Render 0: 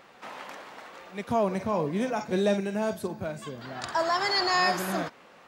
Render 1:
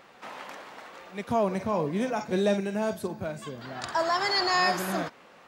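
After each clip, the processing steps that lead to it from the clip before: no audible change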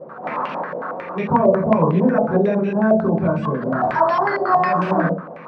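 compression 3:1, threshold -33 dBFS, peak gain reduction 10.5 dB; reverberation RT60 0.45 s, pre-delay 3 ms, DRR -11 dB; step-sequenced low-pass 11 Hz 580–2700 Hz; trim -4 dB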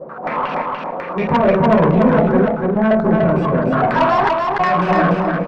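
trance gate "xxxx..xxxxxx" 98 bpm; valve stage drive 14 dB, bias 0.3; feedback delay 292 ms, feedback 20%, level -3 dB; trim +5 dB

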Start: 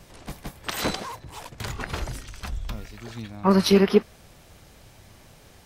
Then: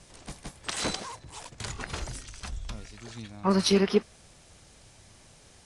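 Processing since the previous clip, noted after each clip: Chebyshev low-pass 10 kHz, order 5; treble shelf 3.9 kHz +9.5 dB; trim -5.5 dB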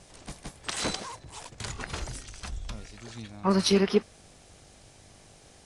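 mains buzz 50 Hz, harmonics 16, -62 dBFS 0 dB/octave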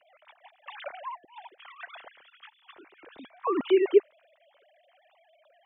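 formants replaced by sine waves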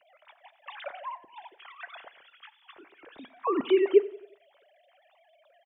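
feedback delay 90 ms, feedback 47%, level -19 dB; on a send at -17.5 dB: reverberation RT60 0.45 s, pre-delay 7 ms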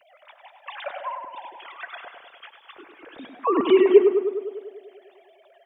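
wow and flutter 18 cents; tape echo 101 ms, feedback 73%, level -4.5 dB, low-pass 1.7 kHz; trim +5.5 dB

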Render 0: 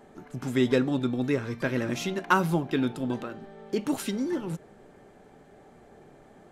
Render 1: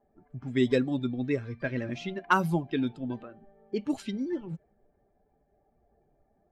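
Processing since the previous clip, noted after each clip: expander on every frequency bin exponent 1.5; level-controlled noise filter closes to 1.3 kHz, open at -21.5 dBFS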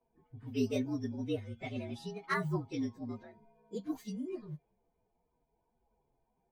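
frequency axis rescaled in octaves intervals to 116%; trim -5.5 dB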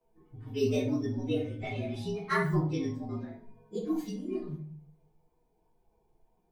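simulated room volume 45 m³, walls mixed, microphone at 0.87 m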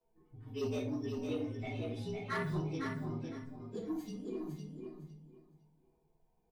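saturation -23.5 dBFS, distortion -16 dB; on a send: feedback delay 507 ms, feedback 20%, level -5.5 dB; on the sum: trim -6 dB

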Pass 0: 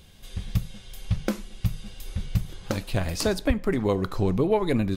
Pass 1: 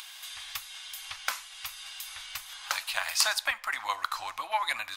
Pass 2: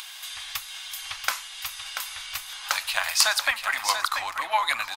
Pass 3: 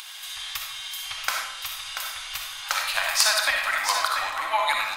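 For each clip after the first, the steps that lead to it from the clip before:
inverse Chebyshev high-pass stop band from 460 Hz, stop band 40 dB; upward compressor, threshold -44 dBFS; trim +6 dB
delay 686 ms -7.5 dB; trim +5 dB
reverberation RT60 0.85 s, pre-delay 20 ms, DRR 0.5 dB; trim -1 dB

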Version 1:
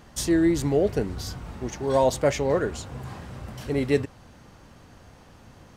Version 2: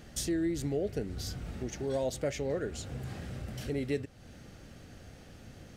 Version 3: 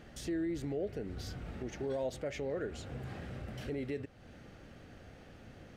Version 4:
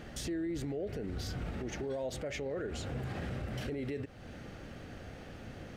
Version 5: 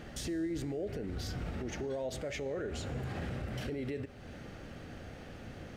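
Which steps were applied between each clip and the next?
peaking EQ 1 kHz -14.5 dB 0.51 oct; compression 2:1, threshold -37 dBFS, peak gain reduction 11.5 dB
peak limiter -27.5 dBFS, peak gain reduction 6.5 dB; tone controls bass -4 dB, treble -11 dB
peak limiter -36.5 dBFS, peak gain reduction 8.5 dB; trim +6.5 dB
feedback comb 81 Hz, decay 1.5 s, harmonics all, mix 50%; trim +5.5 dB

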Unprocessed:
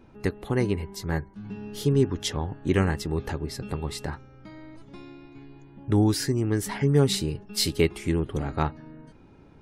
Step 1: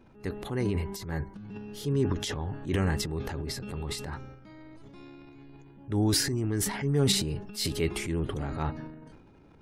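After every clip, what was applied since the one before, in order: transient shaper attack -5 dB, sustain +10 dB; trim -4.5 dB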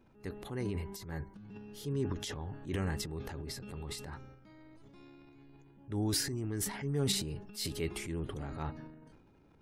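treble shelf 8.6 kHz +4 dB; trim -7.5 dB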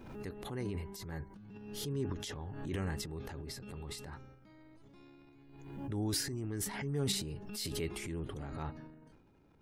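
swell ahead of each attack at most 47 dB/s; trim -2.5 dB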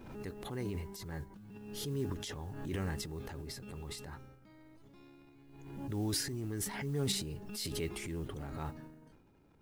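modulation noise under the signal 27 dB

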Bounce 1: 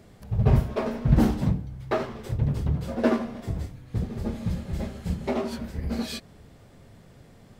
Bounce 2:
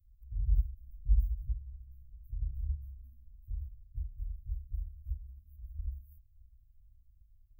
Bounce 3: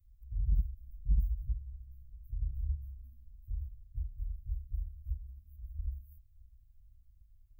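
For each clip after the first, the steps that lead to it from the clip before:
inverse Chebyshev band-stop 330–5500 Hz, stop band 80 dB
saturation -21.5 dBFS, distortion -15 dB; trim +1 dB

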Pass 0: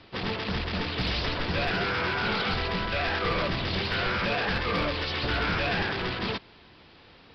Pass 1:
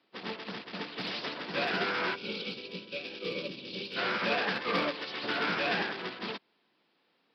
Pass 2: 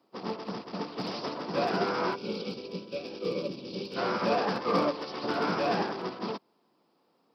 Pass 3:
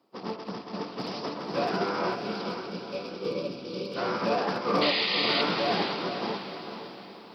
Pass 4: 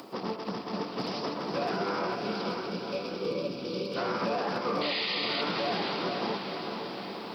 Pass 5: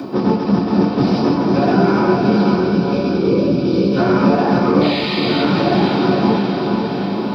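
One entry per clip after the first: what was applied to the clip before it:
high-pass 190 Hz 24 dB/octave; time-frequency box 2.15–3.96 s, 600–2200 Hz -16 dB; upward expansion 2.5:1, over -39 dBFS
high-order bell 2.5 kHz -13 dB; trim +5.5 dB
reverse; upward compressor, threshold -46 dBFS; reverse; painted sound noise, 4.81–5.42 s, 1.8–5 kHz -28 dBFS; echo that smears into a reverb 501 ms, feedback 41%, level -7 dB
upward compressor, threshold -29 dBFS; peak limiter -21.5 dBFS, peak gain reduction 9 dB; added noise white -77 dBFS
in parallel at -10 dB: hard clipper -37 dBFS, distortion -6 dB; on the sum: reverberation RT60 0.50 s, pre-delay 3 ms, DRR -3.5 dB; trim -4 dB

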